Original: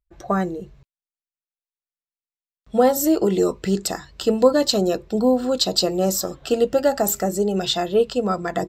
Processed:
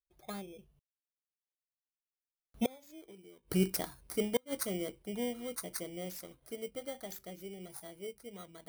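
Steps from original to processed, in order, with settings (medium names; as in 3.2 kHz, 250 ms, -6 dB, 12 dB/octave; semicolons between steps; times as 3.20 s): bit-reversed sample order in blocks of 16 samples; Doppler pass-by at 3.02 s, 16 m/s, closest 3.9 m; inverted gate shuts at -18 dBFS, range -34 dB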